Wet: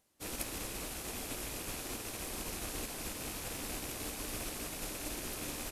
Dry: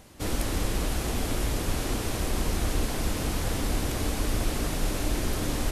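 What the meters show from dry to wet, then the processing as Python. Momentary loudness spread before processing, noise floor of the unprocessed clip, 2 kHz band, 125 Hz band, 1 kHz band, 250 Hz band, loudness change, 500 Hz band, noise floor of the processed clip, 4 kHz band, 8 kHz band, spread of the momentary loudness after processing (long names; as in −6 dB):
1 LU, −32 dBFS, −8.5 dB, −18.5 dB, −11.0 dB, −13.5 dB, −10.0 dB, −12.0 dB, −45 dBFS, −8.0 dB, −5.0 dB, 1 LU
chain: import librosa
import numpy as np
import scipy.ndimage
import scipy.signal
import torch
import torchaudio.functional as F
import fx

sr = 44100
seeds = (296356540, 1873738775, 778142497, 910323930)

y = fx.rattle_buzz(x, sr, strikes_db=-33.0, level_db=-28.0)
y = fx.low_shelf(y, sr, hz=150.0, db=-11.0)
y = fx.quant_companded(y, sr, bits=8)
y = fx.high_shelf(y, sr, hz=6200.0, db=9.0)
y = fx.upward_expand(y, sr, threshold_db=-39.0, expansion=2.5)
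y = y * 10.0 ** (-7.0 / 20.0)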